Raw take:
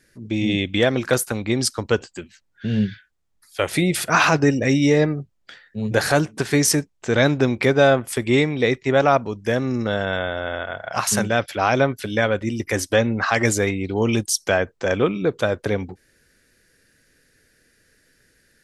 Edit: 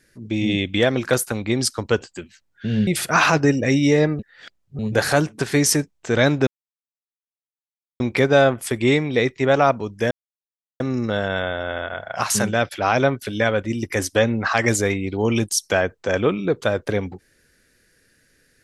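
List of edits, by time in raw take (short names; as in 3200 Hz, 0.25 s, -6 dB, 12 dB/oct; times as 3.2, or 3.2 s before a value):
2.87–3.86 cut
5.18–5.78 reverse
7.46 insert silence 1.53 s
9.57 insert silence 0.69 s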